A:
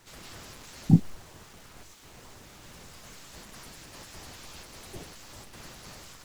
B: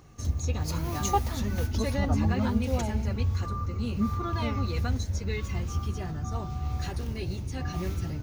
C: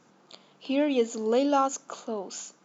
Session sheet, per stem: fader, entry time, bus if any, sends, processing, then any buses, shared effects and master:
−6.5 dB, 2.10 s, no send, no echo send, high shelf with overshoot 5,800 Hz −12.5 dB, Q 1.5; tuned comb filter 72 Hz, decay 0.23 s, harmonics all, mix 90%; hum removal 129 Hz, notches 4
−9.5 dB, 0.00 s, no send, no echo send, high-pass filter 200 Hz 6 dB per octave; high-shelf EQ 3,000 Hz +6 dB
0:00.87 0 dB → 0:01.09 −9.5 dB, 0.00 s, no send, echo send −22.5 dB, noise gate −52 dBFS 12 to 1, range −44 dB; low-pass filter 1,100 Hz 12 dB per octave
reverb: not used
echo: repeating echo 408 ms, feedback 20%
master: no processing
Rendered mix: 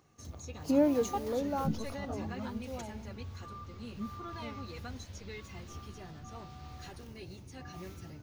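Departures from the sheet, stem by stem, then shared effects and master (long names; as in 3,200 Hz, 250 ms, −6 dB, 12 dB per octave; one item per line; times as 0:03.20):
stem A: entry 2.10 s → 0.75 s
stem B: missing high-shelf EQ 3,000 Hz +6 dB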